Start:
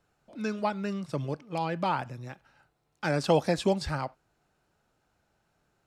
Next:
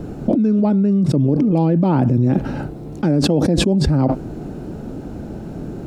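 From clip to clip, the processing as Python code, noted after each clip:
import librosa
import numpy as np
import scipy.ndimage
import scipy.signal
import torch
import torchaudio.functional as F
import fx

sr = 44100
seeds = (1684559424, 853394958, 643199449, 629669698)

y = fx.curve_eq(x, sr, hz=(120.0, 270.0, 1100.0, 1900.0), db=(0, 8, -17, -20))
y = fx.env_flatten(y, sr, amount_pct=100)
y = y * 10.0 ** (4.0 / 20.0)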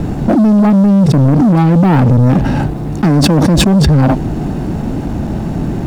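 y = x + 0.42 * np.pad(x, (int(1.1 * sr / 1000.0), 0))[:len(x)]
y = fx.leveller(y, sr, passes=3)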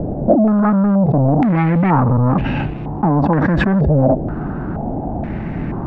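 y = fx.filter_held_lowpass(x, sr, hz=2.1, low_hz=600.0, high_hz=2600.0)
y = y * 10.0 ** (-6.0 / 20.0)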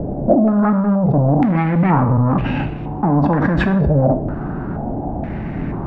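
y = fx.rev_plate(x, sr, seeds[0], rt60_s=0.68, hf_ratio=0.85, predelay_ms=0, drr_db=8.0)
y = y * 10.0 ** (-1.5 / 20.0)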